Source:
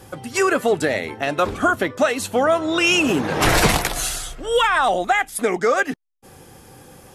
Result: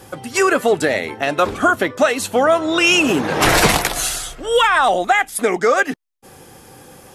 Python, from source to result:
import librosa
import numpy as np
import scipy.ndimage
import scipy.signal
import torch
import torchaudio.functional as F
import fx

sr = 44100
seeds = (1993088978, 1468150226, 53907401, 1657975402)

y = fx.low_shelf(x, sr, hz=150.0, db=-6.0)
y = y * 10.0 ** (3.5 / 20.0)